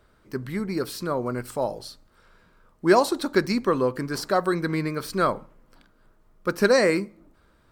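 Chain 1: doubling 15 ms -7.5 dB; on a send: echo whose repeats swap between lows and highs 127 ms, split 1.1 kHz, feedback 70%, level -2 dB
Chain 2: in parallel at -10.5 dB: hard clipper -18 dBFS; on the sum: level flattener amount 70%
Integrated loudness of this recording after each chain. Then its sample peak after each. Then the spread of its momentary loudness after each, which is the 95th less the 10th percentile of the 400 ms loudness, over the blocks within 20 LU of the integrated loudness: -22.0 LUFS, -17.5 LUFS; -4.0 dBFS, -3.5 dBFS; 17 LU, 13 LU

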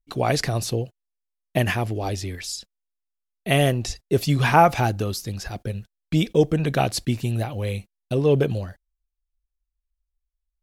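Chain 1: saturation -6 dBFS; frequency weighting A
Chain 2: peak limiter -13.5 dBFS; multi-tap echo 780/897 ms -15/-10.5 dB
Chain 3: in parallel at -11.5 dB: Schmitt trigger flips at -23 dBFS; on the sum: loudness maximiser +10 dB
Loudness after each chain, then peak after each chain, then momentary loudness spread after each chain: -27.0 LUFS, -26.0 LUFS, -14.0 LUFS; -5.0 dBFS, -12.0 dBFS, -1.0 dBFS; 16 LU, 12 LU, 11 LU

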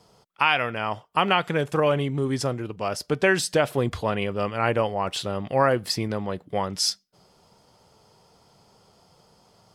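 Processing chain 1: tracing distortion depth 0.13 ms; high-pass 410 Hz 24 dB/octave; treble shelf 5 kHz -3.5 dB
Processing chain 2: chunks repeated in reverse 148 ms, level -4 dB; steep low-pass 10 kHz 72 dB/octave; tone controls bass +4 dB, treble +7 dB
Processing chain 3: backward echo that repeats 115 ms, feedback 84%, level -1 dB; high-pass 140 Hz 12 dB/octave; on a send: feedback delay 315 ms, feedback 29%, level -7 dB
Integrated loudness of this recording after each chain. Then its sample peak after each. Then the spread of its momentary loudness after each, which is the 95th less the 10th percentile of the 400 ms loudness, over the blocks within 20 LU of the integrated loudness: -26.5 LUFS, -22.0 LUFS, -19.0 LUFS; -6.0 dBFS, -3.0 dBFS, -1.5 dBFS; 9 LU, 7 LU, 12 LU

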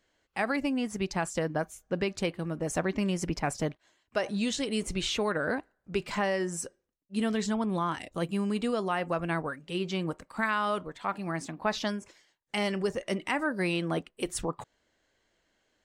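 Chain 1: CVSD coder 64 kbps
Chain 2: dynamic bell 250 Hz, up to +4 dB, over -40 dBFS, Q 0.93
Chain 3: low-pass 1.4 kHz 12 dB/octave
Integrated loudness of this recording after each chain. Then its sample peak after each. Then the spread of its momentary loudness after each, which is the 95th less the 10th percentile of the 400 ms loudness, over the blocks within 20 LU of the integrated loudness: -32.0 LUFS, -29.5 LUFS, -32.5 LUFS; -16.0 dBFS, -14.0 dBFS, -16.5 dBFS; 6 LU, 7 LU, 6 LU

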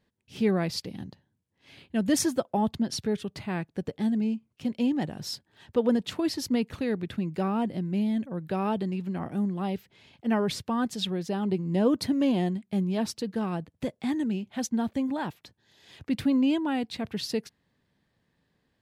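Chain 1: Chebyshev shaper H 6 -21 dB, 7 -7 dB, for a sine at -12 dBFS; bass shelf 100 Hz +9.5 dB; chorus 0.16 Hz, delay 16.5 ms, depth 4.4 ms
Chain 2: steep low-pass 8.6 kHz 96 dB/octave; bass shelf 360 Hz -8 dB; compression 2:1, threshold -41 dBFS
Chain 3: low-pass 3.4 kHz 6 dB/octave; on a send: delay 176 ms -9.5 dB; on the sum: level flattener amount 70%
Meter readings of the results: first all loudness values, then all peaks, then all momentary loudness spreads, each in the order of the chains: -30.0 LUFS, -40.0 LUFS, -23.5 LUFS; -9.0 dBFS, -24.0 dBFS, -10.0 dBFS; 9 LU, 8 LU, 7 LU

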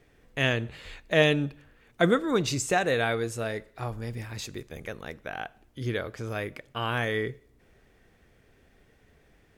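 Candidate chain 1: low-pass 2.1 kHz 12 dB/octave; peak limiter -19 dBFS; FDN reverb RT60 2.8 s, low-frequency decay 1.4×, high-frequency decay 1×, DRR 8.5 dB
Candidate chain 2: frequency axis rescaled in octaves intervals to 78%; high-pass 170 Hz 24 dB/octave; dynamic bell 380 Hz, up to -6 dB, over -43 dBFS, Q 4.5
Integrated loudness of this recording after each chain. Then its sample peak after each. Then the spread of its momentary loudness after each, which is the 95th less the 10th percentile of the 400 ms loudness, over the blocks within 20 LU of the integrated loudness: -32.0 LUFS, -32.0 LUFS; -16.5 dBFS, -11.5 dBFS; 14 LU, 16 LU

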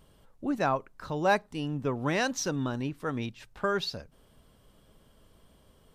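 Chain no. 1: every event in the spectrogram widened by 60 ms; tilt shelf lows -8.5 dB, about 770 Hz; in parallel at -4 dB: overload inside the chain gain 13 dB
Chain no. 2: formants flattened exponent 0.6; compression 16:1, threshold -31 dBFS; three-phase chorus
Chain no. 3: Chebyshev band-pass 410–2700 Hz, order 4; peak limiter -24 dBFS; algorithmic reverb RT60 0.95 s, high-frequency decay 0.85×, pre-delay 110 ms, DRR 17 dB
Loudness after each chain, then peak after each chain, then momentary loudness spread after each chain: -20.5 LUFS, -40.5 LUFS, -38.0 LUFS; -4.5 dBFS, -24.5 dBFS, -23.5 dBFS; 14 LU, 5 LU, 12 LU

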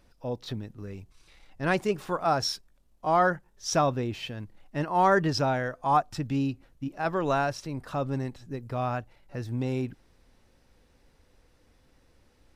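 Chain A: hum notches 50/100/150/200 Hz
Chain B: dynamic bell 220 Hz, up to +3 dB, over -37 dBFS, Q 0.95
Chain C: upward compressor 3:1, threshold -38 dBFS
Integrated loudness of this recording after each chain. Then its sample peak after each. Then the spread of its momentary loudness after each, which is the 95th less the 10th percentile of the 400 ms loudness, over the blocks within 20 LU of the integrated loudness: -29.0 LUFS, -28.0 LUFS, -29.0 LUFS; -11.0 dBFS, -10.5 dBFS, -11.0 dBFS; 15 LU, 14 LU, 14 LU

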